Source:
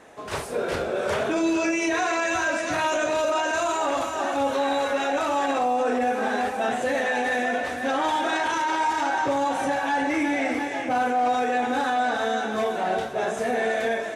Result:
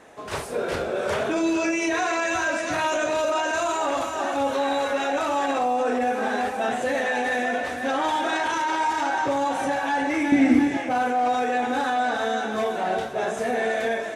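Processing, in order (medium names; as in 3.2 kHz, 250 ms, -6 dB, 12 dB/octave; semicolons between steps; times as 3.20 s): 10.32–10.77 s: resonant low shelf 360 Hz +11.5 dB, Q 1.5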